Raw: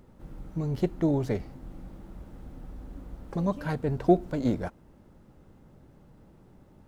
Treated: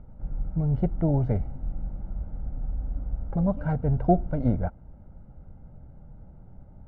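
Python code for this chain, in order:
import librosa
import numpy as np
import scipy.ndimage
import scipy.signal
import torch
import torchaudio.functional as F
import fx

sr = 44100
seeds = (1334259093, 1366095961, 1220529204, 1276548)

y = scipy.signal.sosfilt(scipy.signal.butter(2, 1200.0, 'lowpass', fs=sr, output='sos'), x)
y = fx.low_shelf(y, sr, hz=110.0, db=11.0)
y = y + 0.52 * np.pad(y, (int(1.4 * sr / 1000.0), 0))[:len(y)]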